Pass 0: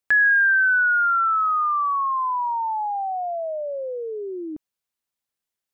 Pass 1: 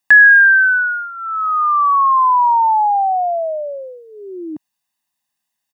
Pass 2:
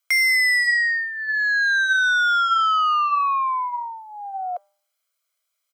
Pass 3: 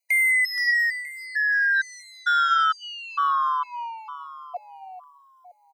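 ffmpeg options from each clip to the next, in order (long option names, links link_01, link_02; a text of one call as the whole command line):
ffmpeg -i in.wav -af "highpass=160,aecho=1:1:1.1:0.87,volume=6.5dB" out.wav
ffmpeg -i in.wav -af "asoftclip=type=tanh:threshold=-17dB,bandreject=frequency=191.8:width_type=h:width=4,bandreject=frequency=383.6:width_type=h:width=4,bandreject=frequency=575.4:width_type=h:width=4,bandreject=frequency=767.2:width_type=h:width=4,bandreject=frequency=959:width_type=h:width=4,bandreject=frequency=1150.8:width_type=h:width=4,bandreject=frequency=1342.6:width_type=h:width=4,bandreject=frequency=1534.4:width_type=h:width=4,afreqshift=410" out.wav
ffmpeg -i in.wav -af "aecho=1:1:473|946|1419|1892:0.282|0.121|0.0521|0.0224,afftfilt=real='re*gt(sin(2*PI*1.1*pts/sr)*(1-2*mod(floor(b*sr/1024/990),2)),0)':imag='im*gt(sin(2*PI*1.1*pts/sr)*(1-2*mod(floor(b*sr/1024/990),2)),0)':win_size=1024:overlap=0.75,volume=-1.5dB" out.wav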